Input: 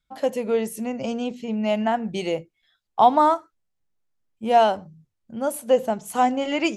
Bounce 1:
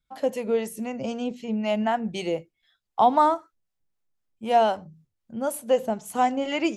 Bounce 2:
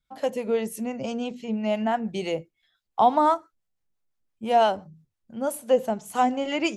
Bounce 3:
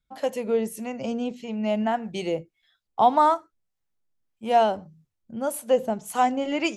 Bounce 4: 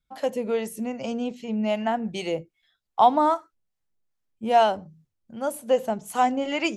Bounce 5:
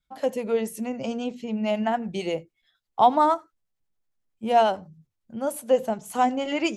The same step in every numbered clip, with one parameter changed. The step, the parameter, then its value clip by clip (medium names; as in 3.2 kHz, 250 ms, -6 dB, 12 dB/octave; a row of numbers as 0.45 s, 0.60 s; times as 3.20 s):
harmonic tremolo, rate: 3.9 Hz, 5.9 Hz, 1.7 Hz, 2.5 Hz, 11 Hz